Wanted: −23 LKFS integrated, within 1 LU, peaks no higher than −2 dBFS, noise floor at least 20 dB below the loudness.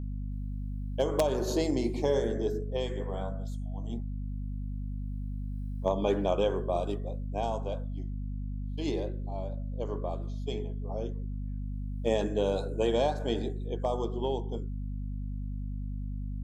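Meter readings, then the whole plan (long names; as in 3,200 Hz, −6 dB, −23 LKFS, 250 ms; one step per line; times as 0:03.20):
mains hum 50 Hz; hum harmonics up to 250 Hz; level of the hum −32 dBFS; integrated loudness −33.0 LKFS; sample peak −14.0 dBFS; target loudness −23.0 LKFS
→ mains-hum notches 50/100/150/200/250 Hz
level +10 dB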